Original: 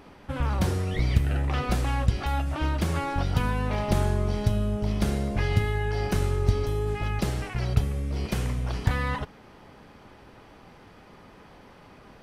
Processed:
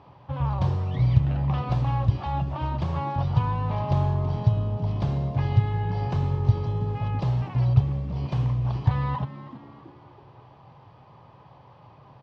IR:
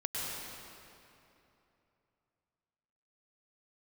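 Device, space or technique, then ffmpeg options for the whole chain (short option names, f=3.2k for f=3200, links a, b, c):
frequency-shifting delay pedal into a guitar cabinet: -filter_complex "[0:a]equalizer=f=125:t=o:w=1:g=8,equalizer=f=250:t=o:w=1:g=-8,equalizer=f=500:t=o:w=1:g=-8,equalizer=f=1k:t=o:w=1:g=8,equalizer=f=2k:t=o:w=1:g=-10,equalizer=f=4k:t=o:w=1:g=-4,asplit=5[a][b][c][d][e];[b]adelay=326,afreqshift=73,volume=-15dB[f];[c]adelay=652,afreqshift=146,volume=-22.7dB[g];[d]adelay=978,afreqshift=219,volume=-30.5dB[h];[e]adelay=1304,afreqshift=292,volume=-38.2dB[i];[a][f][g][h][i]amix=inputs=5:normalize=0,highpass=89,equalizer=f=130:t=q:w=4:g=5,equalizer=f=200:t=q:w=4:g=-6,equalizer=f=550:t=q:w=4:g=6,equalizer=f=1.4k:t=q:w=4:g=-9,lowpass=f=4.2k:w=0.5412,lowpass=f=4.2k:w=1.3066"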